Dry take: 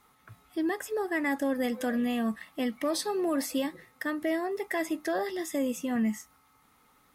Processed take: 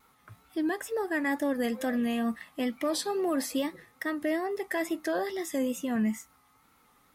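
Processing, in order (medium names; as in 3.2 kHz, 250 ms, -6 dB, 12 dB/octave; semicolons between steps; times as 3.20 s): wow and flutter 74 cents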